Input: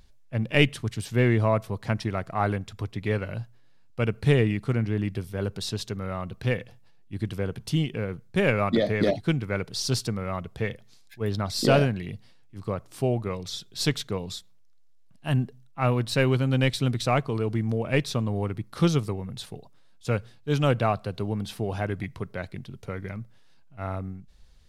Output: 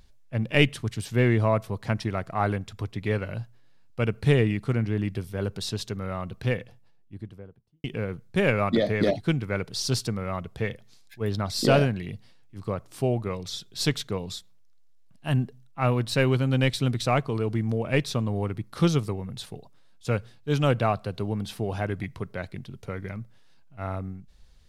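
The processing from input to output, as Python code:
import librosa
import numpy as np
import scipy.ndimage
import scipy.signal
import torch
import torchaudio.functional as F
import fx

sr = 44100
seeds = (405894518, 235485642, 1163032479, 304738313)

y = fx.studio_fade_out(x, sr, start_s=6.36, length_s=1.48)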